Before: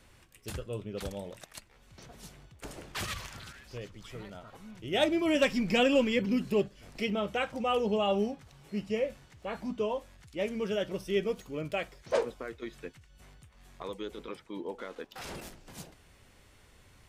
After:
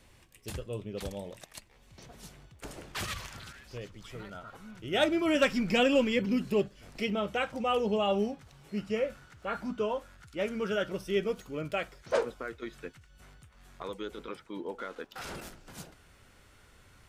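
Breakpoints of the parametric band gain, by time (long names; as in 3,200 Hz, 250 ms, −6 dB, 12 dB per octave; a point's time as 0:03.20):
parametric band 1,400 Hz 0.3 octaves
−5 dB
from 0:02.10 +1 dB
from 0:04.20 +9.5 dB
from 0:05.70 +2.5 dB
from 0:08.78 +14.5 dB
from 0:10.90 +7 dB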